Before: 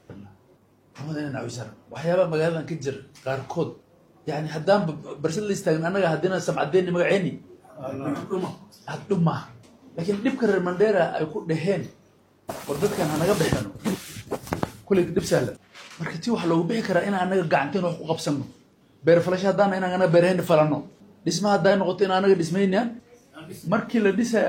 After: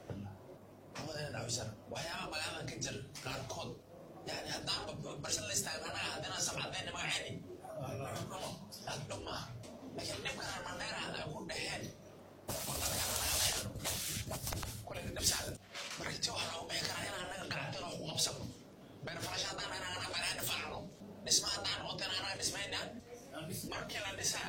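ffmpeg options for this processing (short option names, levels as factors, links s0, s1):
-filter_complex "[0:a]asettb=1/sr,asplit=3[s0][s1][s2];[s0]atrim=end=14.424[s3];[s1]atrim=start=14.42:end=15.06,asetpts=PTS-STARTPTS,afade=t=in:d=0.004:c=qsin,afade=t=out:st=0.636:d=0.004:c=qsin,acompressor=threshold=0.0708:ratio=6:attack=3.2:release=140:knee=1:detection=peak[s4];[s2]atrim=start=15.056[s5];[s3][s4]acrossfade=d=0.004:c1=hsin:c2=qsin[s6];[s6][s5]acrossfade=d=0.004:c1=qsin:c2=hsin,asettb=1/sr,asplit=3[s7][s8][s9];[s7]atrim=end=17.104[s10];[s8]atrim=start=17.1:end=19.24,asetpts=PTS-STARTPTS,afade=t=in:d=0.004:c=qsin,afade=t=out:st=2.136:d=0.004:c=qsin,acompressor=threshold=0.0794:ratio=6:attack=3.2:release=140:knee=1:detection=peak[s11];[s9]atrim=start=19.236[s12];[s10][s11]acrossfade=d=0.004:c1=hsin:c2=qsin[s13];[s13][s12]acrossfade=d=0.004:c1=qsin:c2=hsin,afftfilt=real='re*lt(hypot(re,im),0.158)':imag='im*lt(hypot(re,im),0.158)':win_size=1024:overlap=0.75,equalizer=f=630:w=2.9:g=7.5,acrossover=split=130|3000[s14][s15][s16];[s15]acompressor=threshold=0.00355:ratio=3[s17];[s14][s17][s16]amix=inputs=3:normalize=0,volume=1.19"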